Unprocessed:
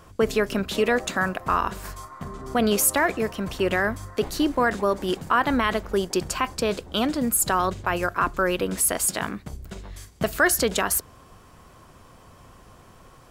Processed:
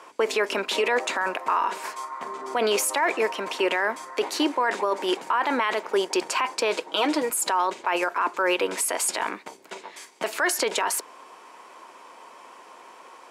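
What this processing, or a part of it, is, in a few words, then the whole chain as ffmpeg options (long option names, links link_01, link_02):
laptop speaker: -filter_complex "[0:a]highpass=frequency=330:width=0.5412,highpass=frequency=330:width=1.3066,equalizer=frequency=930:width_type=o:width=0.24:gain=11,equalizer=frequency=2300:width_type=o:width=0.56:gain=6.5,alimiter=limit=-17dB:level=0:latency=1:release=15,lowpass=9700,asettb=1/sr,asplit=3[link_01][link_02][link_03];[link_01]atrim=end=6.774[link_04];[link_02]atrim=start=6.77:end=7.3,asetpts=PTS-STARTPTS,afade=type=in:duration=0.004:curve=qsin,afade=type=out:start_time=0.526:duration=0.004:curve=qsin,aecho=1:1:6.3:0.62,atrim=end_sample=23373[link_05];[link_03]atrim=start=7.296[link_06];[link_04][link_05]acrossfade=duration=0.004:curve1=hsin:curve2=qsin[link_07];[link_07][link_06]acrossfade=duration=0.004:curve1=qsin:curve2=hsin,volume=3dB"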